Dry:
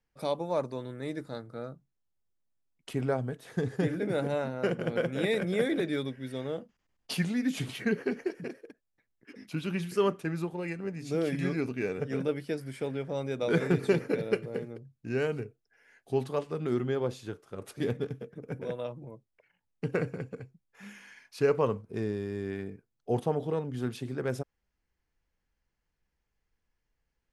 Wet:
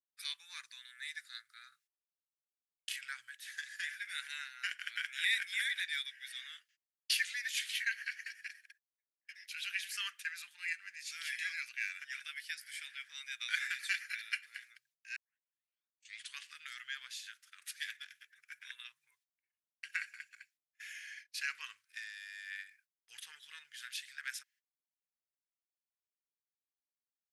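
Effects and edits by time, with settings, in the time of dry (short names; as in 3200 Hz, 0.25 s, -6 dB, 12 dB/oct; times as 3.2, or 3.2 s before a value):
1.69–2.99 doubler 31 ms -2 dB
15.16 tape start 1.24 s
whole clip: gate -54 dBFS, range -28 dB; elliptic high-pass 1700 Hz, stop band 60 dB; gain +5 dB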